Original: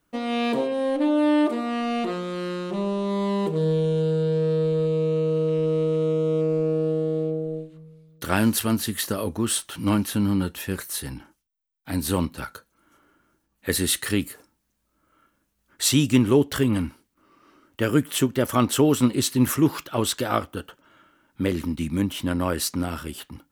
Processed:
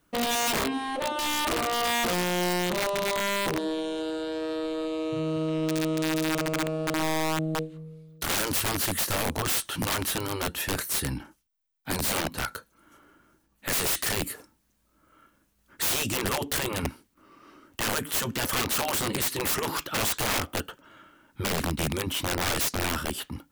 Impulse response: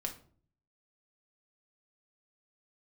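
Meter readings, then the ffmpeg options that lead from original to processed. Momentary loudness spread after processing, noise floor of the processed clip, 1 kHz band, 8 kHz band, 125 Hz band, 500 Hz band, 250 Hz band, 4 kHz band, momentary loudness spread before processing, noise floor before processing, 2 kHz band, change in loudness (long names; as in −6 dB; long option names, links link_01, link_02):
8 LU, −69 dBFS, +1.0 dB, +0.5 dB, −8.0 dB, −7.0 dB, −8.5 dB, +1.5 dB, 11 LU, −73 dBFS, +3.5 dB, −3.5 dB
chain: -af "afftfilt=real='re*lt(hypot(re,im),0.355)':imag='im*lt(hypot(re,im),0.355)':win_size=1024:overlap=0.75,acontrast=27,aeval=exprs='(mod(8.91*val(0)+1,2)-1)/8.91':channel_layout=same,volume=-1.5dB"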